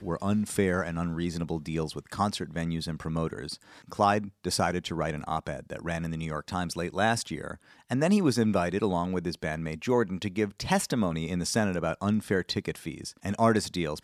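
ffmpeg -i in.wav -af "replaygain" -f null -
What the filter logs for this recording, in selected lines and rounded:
track_gain = +9.1 dB
track_peak = 0.259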